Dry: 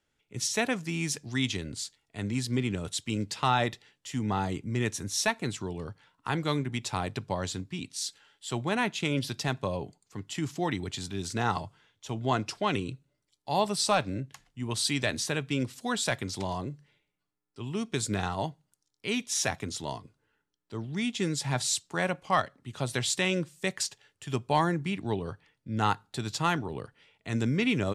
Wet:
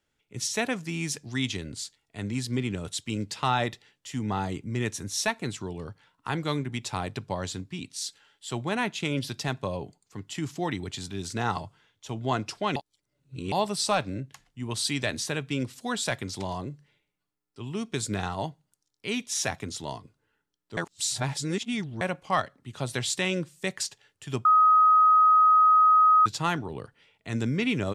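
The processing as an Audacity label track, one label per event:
12.760000	13.520000	reverse
20.770000	22.010000	reverse
24.450000	26.260000	bleep 1260 Hz -15 dBFS

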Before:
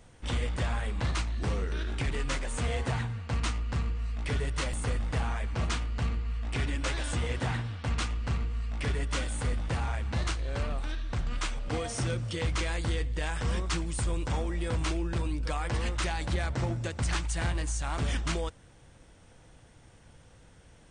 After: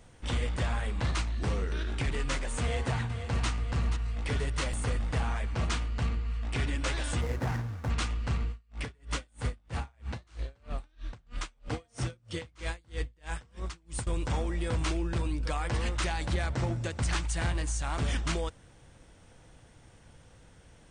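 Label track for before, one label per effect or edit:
2.610000	3.480000	echo throw 0.48 s, feedback 55%, level -9.5 dB
7.210000	7.900000	median filter over 15 samples
8.490000	14.070000	dB-linear tremolo 3.1 Hz, depth 35 dB

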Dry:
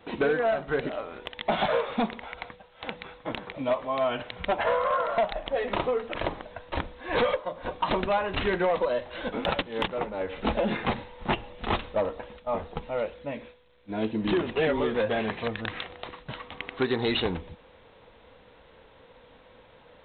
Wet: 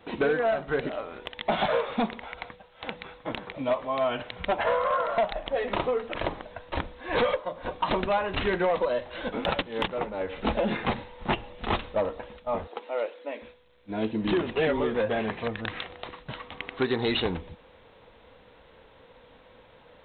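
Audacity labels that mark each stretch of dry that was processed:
12.670000	13.420000	inverse Chebyshev high-pass stop band from 150 Hz
14.770000	15.640000	LPF 3300 Hz 6 dB/oct

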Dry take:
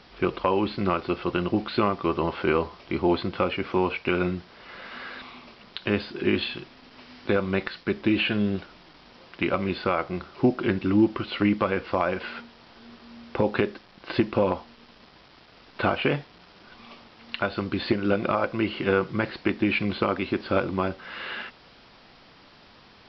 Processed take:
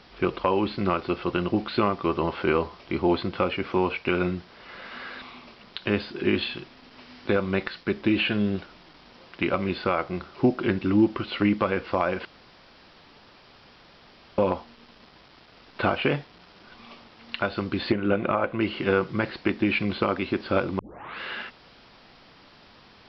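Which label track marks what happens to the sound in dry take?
12.250000	14.380000	room tone
17.920000	18.610000	LPF 3100 Hz 24 dB/oct
20.790000	20.790000	tape start 0.41 s

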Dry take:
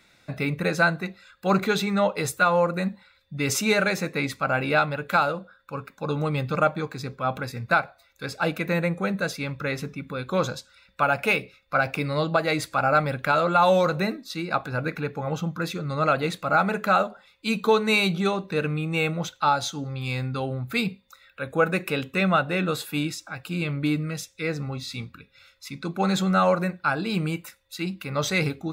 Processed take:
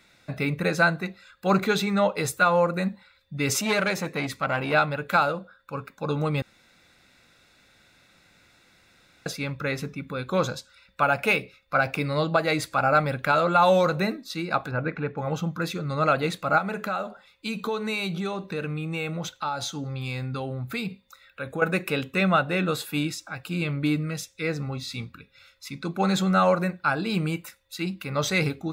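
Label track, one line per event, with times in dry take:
3.550000	4.730000	core saturation saturates under 1100 Hz
6.420000	9.260000	room tone
14.710000	15.180000	LPF 2400 Hz
16.580000	21.620000	compressor 3:1, threshold -27 dBFS

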